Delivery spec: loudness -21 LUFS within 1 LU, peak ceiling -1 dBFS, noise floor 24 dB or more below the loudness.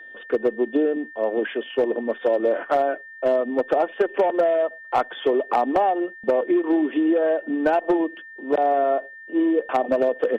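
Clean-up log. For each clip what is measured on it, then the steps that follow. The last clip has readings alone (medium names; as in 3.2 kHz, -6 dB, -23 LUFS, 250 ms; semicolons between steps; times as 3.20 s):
clipped samples 0.6%; clipping level -12.0 dBFS; steady tone 1.8 kHz; tone level -39 dBFS; loudness -22.5 LUFS; peak level -12.0 dBFS; loudness target -21.0 LUFS
-> clip repair -12 dBFS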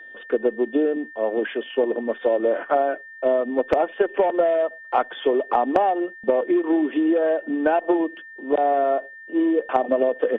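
clipped samples 0.0%; steady tone 1.8 kHz; tone level -39 dBFS
-> band-stop 1.8 kHz, Q 30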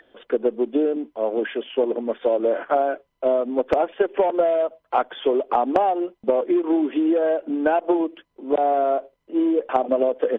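steady tone not found; loudness -22.5 LUFS; peak level -3.0 dBFS; loudness target -21.0 LUFS
-> trim +1.5 dB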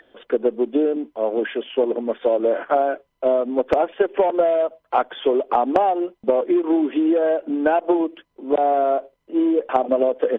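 loudness -21.0 LUFS; peak level -1.5 dBFS; noise floor -69 dBFS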